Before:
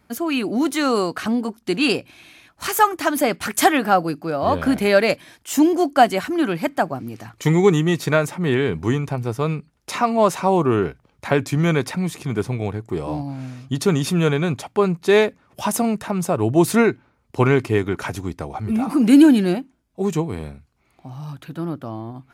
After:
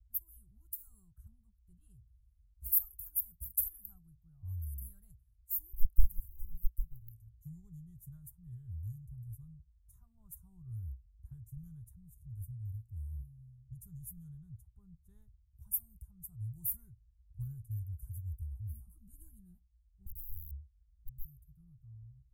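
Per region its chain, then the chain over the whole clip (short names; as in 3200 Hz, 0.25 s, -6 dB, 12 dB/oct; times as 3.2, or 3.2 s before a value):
5.73–7.11 high shelf 11000 Hz -7 dB + Doppler distortion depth 0.87 ms
20.06–21.25 elliptic low-pass 530 Hz, stop band 50 dB + compressor 5:1, threshold -25 dBFS + wrapped overs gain 30 dB
whole clip: inverse Chebyshev band-stop 250–5000 Hz, stop band 70 dB; bell 490 Hz -4 dB 0.33 oct; low-pass opened by the level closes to 2300 Hz, open at -46.5 dBFS; gain +9 dB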